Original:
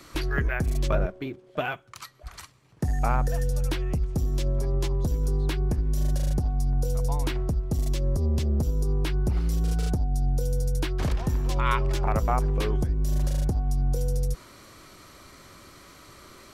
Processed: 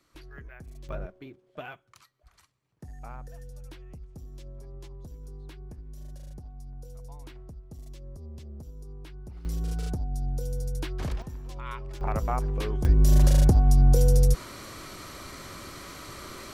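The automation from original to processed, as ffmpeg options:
ffmpeg -i in.wav -af "asetnsamples=nb_out_samples=441:pad=0,asendcmd='0.89 volume volume -11.5dB;2.02 volume volume -18dB;9.45 volume volume -5.5dB;11.22 volume volume -13.5dB;12.01 volume volume -4dB;12.85 volume volume 7dB',volume=-19.5dB" out.wav

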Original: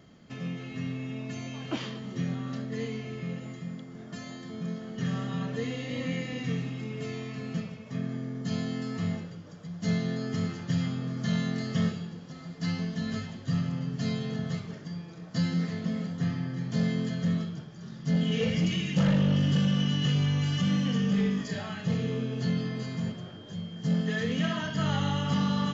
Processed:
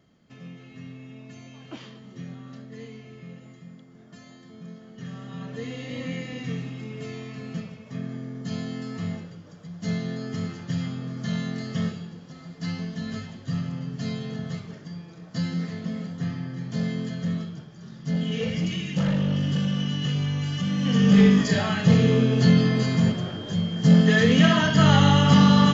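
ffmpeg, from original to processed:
ffmpeg -i in.wav -af "volume=11.5dB,afade=type=in:start_time=5.19:duration=0.65:silence=0.446684,afade=type=in:start_time=20.76:duration=0.45:silence=0.266073" out.wav

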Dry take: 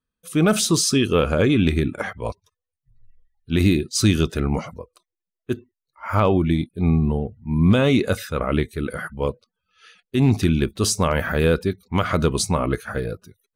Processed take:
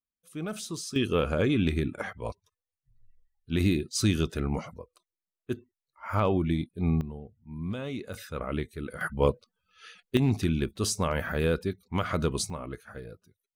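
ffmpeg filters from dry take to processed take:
ffmpeg -i in.wav -af "asetnsamples=nb_out_samples=441:pad=0,asendcmd='0.96 volume volume -7.5dB;7.01 volume volume -18dB;8.14 volume volume -10.5dB;9.01 volume volume 0dB;10.17 volume volume -8dB;12.5 volume volume -16dB',volume=-17.5dB" out.wav

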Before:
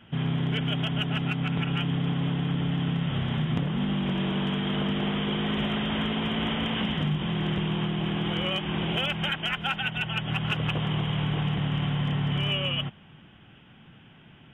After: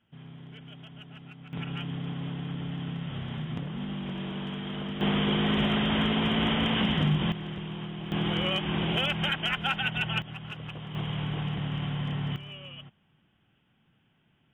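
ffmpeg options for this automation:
ffmpeg -i in.wav -af "asetnsamples=nb_out_samples=441:pad=0,asendcmd='1.53 volume volume -7.5dB;5.01 volume volume 2dB;7.32 volume volume -9dB;8.12 volume volume 0dB;10.22 volume volume -12dB;10.95 volume volume -4.5dB;12.36 volume volume -16dB',volume=-19dB" out.wav

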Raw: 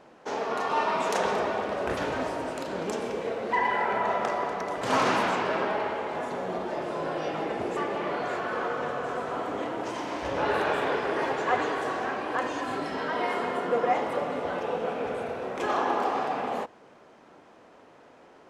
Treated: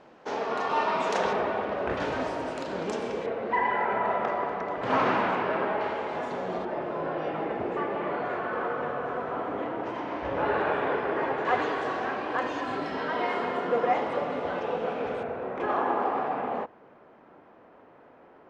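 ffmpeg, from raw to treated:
ffmpeg -i in.wav -af "asetnsamples=nb_out_samples=441:pad=0,asendcmd='1.33 lowpass f 3100;2 lowpass f 6300;3.26 lowpass f 2500;5.81 lowpass f 5700;6.65 lowpass f 2300;11.45 lowpass f 4700;15.23 lowpass f 2000',lowpass=5500" out.wav

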